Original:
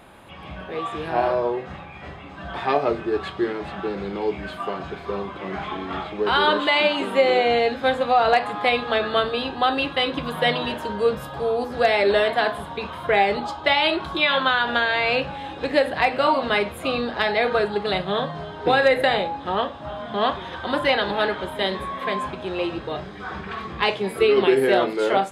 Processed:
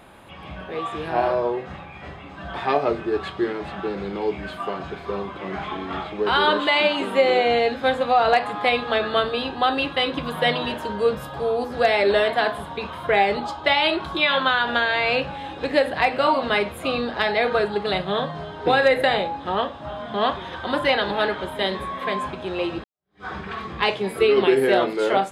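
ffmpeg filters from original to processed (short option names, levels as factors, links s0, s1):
-filter_complex "[0:a]asplit=2[s0][s1];[s0]atrim=end=22.84,asetpts=PTS-STARTPTS,afade=t=out:st=22.836:d=0.004:c=hsin[s2];[s1]atrim=start=22.84,asetpts=PTS-STARTPTS,afade=t=in:d=0.41:c=exp[s3];[s2][s3]concat=n=2:v=0:a=1"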